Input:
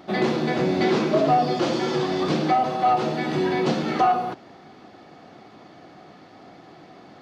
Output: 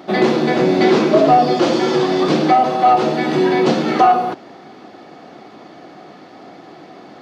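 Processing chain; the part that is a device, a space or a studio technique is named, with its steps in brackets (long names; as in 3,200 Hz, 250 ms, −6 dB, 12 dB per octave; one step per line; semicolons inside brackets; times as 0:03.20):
filter by subtraction (in parallel: low-pass filter 310 Hz 12 dB per octave + polarity inversion)
on the sum: level +6.5 dB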